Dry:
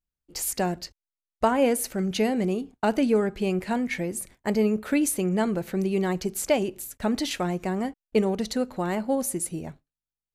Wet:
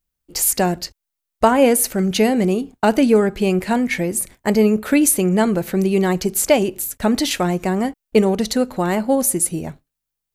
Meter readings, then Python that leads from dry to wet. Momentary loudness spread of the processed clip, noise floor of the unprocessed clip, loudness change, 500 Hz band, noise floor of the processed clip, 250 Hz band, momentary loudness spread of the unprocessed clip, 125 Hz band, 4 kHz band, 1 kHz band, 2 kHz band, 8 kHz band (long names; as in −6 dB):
7 LU, below −85 dBFS, +8.5 dB, +8.0 dB, −81 dBFS, +8.0 dB, 7 LU, +8.0 dB, +8.5 dB, +8.0 dB, +8.0 dB, +11.0 dB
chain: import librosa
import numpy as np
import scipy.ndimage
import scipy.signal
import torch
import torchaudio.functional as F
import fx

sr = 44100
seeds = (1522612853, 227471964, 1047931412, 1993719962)

y = fx.high_shelf(x, sr, hz=10000.0, db=7.5)
y = y * librosa.db_to_amplitude(8.0)